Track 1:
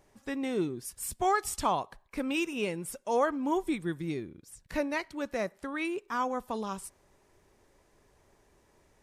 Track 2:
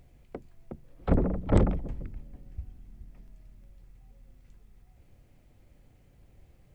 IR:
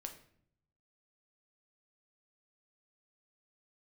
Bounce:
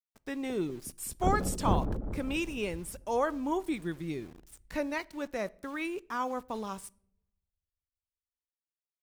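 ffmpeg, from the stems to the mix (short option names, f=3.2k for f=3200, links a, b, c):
-filter_complex "[0:a]aeval=exprs='val(0)*gte(abs(val(0)),0.00398)':c=same,volume=-3.5dB,asplit=2[a][b];[b]volume=-10.5dB[c];[1:a]afwtdn=0.0178,adelay=150,volume=-6.5dB,asplit=2[d][e];[e]volume=-8dB[f];[2:a]atrim=start_sample=2205[g];[c][g]afir=irnorm=-1:irlink=0[h];[f]aecho=0:1:199|398|597|796|995|1194|1393|1592|1791:1|0.58|0.336|0.195|0.113|0.0656|0.0381|0.0221|0.0128[i];[a][d][h][i]amix=inputs=4:normalize=0"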